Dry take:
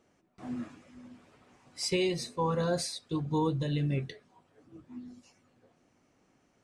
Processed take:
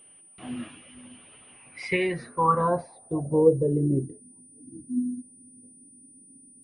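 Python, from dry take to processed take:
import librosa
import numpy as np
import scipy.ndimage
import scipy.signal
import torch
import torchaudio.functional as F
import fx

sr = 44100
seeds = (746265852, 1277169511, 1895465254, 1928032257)

y = fx.filter_sweep_lowpass(x, sr, from_hz=3000.0, to_hz=260.0, start_s=1.49, end_s=4.23, q=6.9)
y = y + 10.0 ** (-53.0 / 20.0) * np.sin(2.0 * np.pi * 9300.0 * np.arange(len(y)) / sr)
y = y * librosa.db_to_amplitude(2.0)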